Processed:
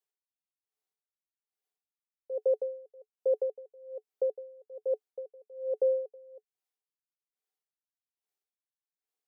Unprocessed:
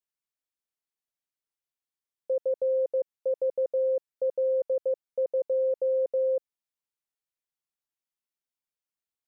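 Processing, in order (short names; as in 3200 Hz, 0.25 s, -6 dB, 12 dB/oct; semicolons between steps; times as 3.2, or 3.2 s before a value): steep high-pass 290 Hz; small resonant body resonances 430/750 Hz, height 12 dB, ringing for 60 ms; dB-linear tremolo 1.2 Hz, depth 29 dB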